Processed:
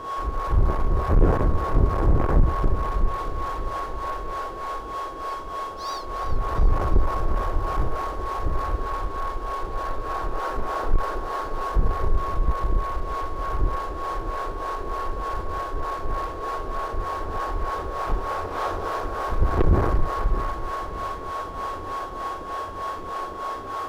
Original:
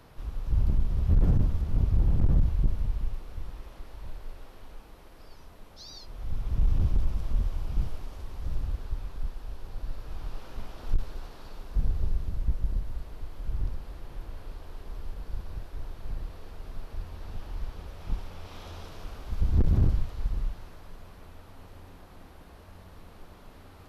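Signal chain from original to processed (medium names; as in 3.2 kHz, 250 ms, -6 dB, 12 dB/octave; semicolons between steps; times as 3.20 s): high-order bell 770 Hz +15.5 dB 2.9 oct; whistle 1.1 kHz -33 dBFS; waveshaping leveller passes 2; harmonic tremolo 3.3 Hz, depth 70%, crossover 440 Hz; on a send: two-band feedback delay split 400 Hz, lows 622 ms, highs 347 ms, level -15 dB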